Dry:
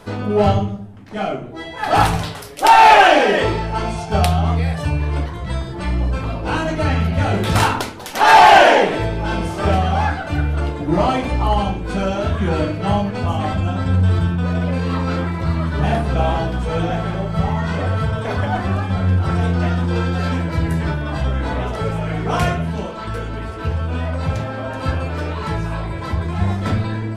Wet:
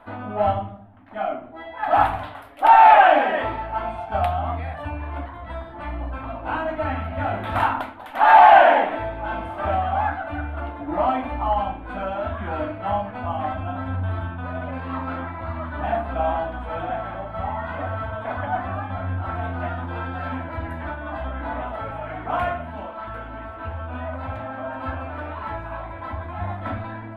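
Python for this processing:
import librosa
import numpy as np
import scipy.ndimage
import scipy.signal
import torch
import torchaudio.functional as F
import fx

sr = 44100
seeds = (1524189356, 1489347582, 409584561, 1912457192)

y = fx.curve_eq(x, sr, hz=(100.0, 150.0, 270.0, 420.0, 650.0, 1500.0, 3500.0, 5600.0, 13000.0), db=(0, -14, 7, -9, 10, 7, -3, -23, -7))
y = F.gain(torch.from_numpy(y), -11.0).numpy()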